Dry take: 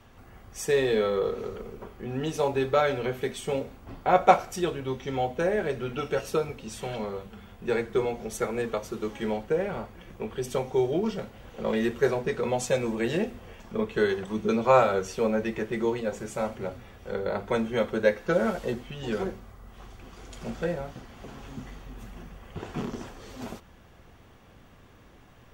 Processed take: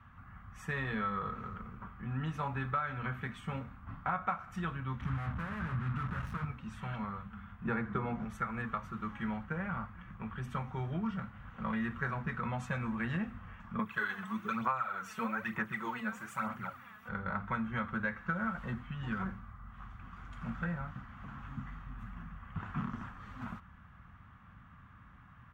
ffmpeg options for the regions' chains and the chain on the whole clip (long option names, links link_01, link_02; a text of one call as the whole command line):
ffmpeg -i in.wav -filter_complex "[0:a]asettb=1/sr,asplit=3[link_01][link_02][link_03];[link_01]atrim=end=5.004[link_04];[link_02]atrim=start=5:end=6.45,asetpts=PTS-STARTPTS,afade=type=in:duration=0.004:curve=qsin,afade=type=out:start_time=1.446:duration=0.004:curve=qsin,aeval=exprs='(tanh(56.2*val(0)+0.4)-tanh(0.4))/56.2':channel_layout=same,equalizer=frequency=82:width=0.42:gain=15,acrusher=bits=5:mix=0:aa=0.5[link_05];[link_03]atrim=start=6.446[link_06];[link_04][link_05]acrossfade=duration=0.004:curve1=hsin:curve2=qsin[link_07];[link_07][link_06]acrossfade=duration=0.004:curve1=qsin:curve2=hsin,asettb=1/sr,asplit=3[link_08][link_09][link_10];[link_08]atrim=end=7.654[link_11];[link_09]atrim=start=7.65:end=8.25,asetpts=PTS-STARTPTS,afade=type=in:duration=0.004:curve=qsin,afade=type=out:start_time=0.596:duration=0.004:curve=qsin,lowpass=8800,equalizer=frequency=340:width=0.38:gain=10[link_12];[link_10]atrim=start=8.246[link_13];[link_11][link_12]acrossfade=duration=0.004:curve1=hsin:curve2=qsin[link_14];[link_14][link_13]acrossfade=duration=0.004:curve1=qsin:curve2=hsin,asettb=1/sr,asplit=3[link_15][link_16][link_17];[link_15]atrim=end=13.794[link_18];[link_16]atrim=start=13.79:end=17.09,asetpts=PTS-STARTPTS,afade=type=in:duration=0.004:curve=qsin,afade=type=out:start_time=3.296:duration=0.004:curve=qsin,highpass=98,aphaser=in_gain=1:out_gain=1:delay=4.7:decay=0.59:speed=1.1:type=sinusoidal,aemphasis=mode=production:type=bsi[link_19];[link_17]atrim=start=17.086[link_20];[link_18][link_19]acrossfade=duration=0.004:curve1=hsin:curve2=qsin[link_21];[link_21][link_20]acrossfade=duration=0.004:curve1=qsin:curve2=hsin,firequalizer=gain_entry='entry(190,0);entry(390,-23);entry(1200,5);entry(2300,-7);entry(4800,-22)':delay=0.05:min_phase=1,acompressor=threshold=-30dB:ratio=10,highpass=44" out.wav